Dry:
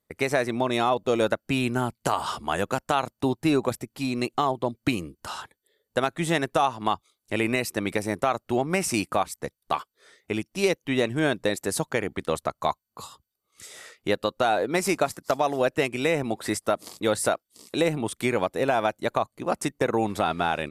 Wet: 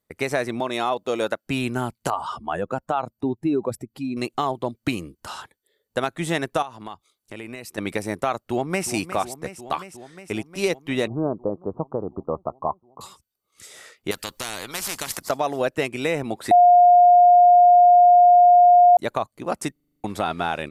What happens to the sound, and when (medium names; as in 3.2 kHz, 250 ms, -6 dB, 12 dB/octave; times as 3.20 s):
0.60–1.47 s: high-pass 290 Hz 6 dB/octave
2.10–4.17 s: spectral contrast enhancement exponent 1.6
6.62–7.78 s: compression 2.5:1, threshold -37 dBFS
8.44–8.88 s: echo throw 360 ms, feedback 80%, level -12.5 dB
11.07–13.01 s: steep low-pass 1.2 kHz 72 dB/octave
14.11–15.29 s: spectrum-flattening compressor 4:1
16.51–18.97 s: bleep 710 Hz -9 dBFS
19.72 s: stutter in place 0.04 s, 8 plays